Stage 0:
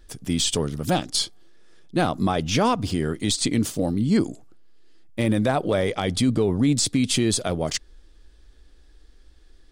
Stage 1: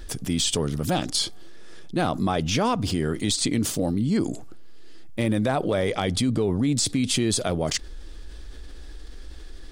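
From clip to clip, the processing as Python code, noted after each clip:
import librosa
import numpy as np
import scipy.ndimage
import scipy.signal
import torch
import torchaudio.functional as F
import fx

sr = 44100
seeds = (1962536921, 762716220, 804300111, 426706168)

y = fx.env_flatten(x, sr, amount_pct=50)
y = y * librosa.db_to_amplitude(-4.0)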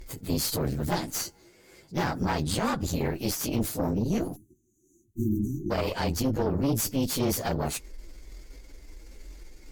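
y = fx.partial_stretch(x, sr, pct=112)
y = fx.cheby_harmonics(y, sr, harmonics=(4, 5), levels_db=(-10, -23), full_scale_db=-14.0)
y = fx.spec_erase(y, sr, start_s=4.36, length_s=1.35, low_hz=400.0, high_hz=5800.0)
y = y * librosa.db_to_amplitude(-3.5)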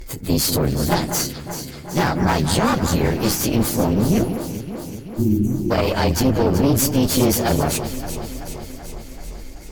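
y = fx.echo_alternate(x, sr, ms=191, hz=2200.0, feedback_pct=80, wet_db=-9.0)
y = y * librosa.db_to_amplitude(9.0)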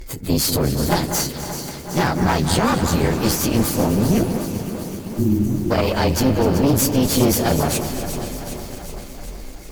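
y = fx.echo_crushed(x, sr, ms=253, feedback_pct=80, bits=6, wet_db=-13.0)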